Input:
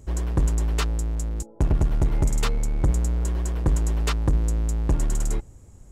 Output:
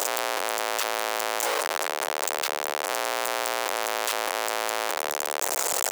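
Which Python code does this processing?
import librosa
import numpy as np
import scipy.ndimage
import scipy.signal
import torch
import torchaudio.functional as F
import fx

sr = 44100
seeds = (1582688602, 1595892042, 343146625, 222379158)

y = np.sign(x) * np.sqrt(np.mean(np.square(x)))
y = scipy.signal.sosfilt(scipy.signal.butter(4, 530.0, 'highpass', fs=sr, output='sos'), y)
y = fx.env_flatten(y, sr, amount_pct=70)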